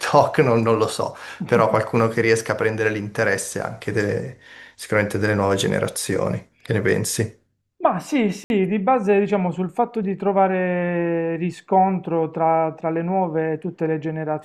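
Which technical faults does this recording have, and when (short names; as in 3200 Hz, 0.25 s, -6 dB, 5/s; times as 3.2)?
8.44–8.5 gap 61 ms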